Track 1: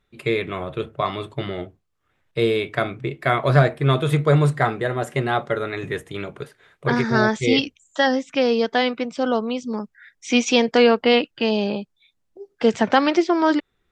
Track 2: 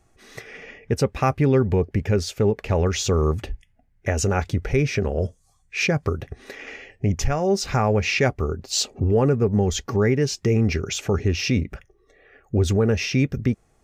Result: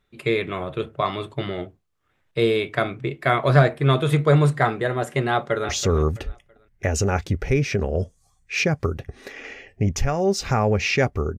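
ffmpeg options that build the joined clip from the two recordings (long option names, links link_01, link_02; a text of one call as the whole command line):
ffmpeg -i cue0.wav -i cue1.wav -filter_complex "[0:a]apad=whole_dur=11.38,atrim=end=11.38,atrim=end=5.692[link_01];[1:a]atrim=start=2.918:end=8.61[link_02];[link_01][link_02]acrossfade=duration=0.004:curve1=hsin:curve2=hsin,asplit=2[link_03][link_04];[link_04]afade=type=in:start_time=5.3:duration=0.01,afade=type=out:start_time=5.69:duration=0.01,aecho=0:1:330|660|990:0.251189|0.0753566|0.022607[link_05];[link_03][link_05]amix=inputs=2:normalize=0" out.wav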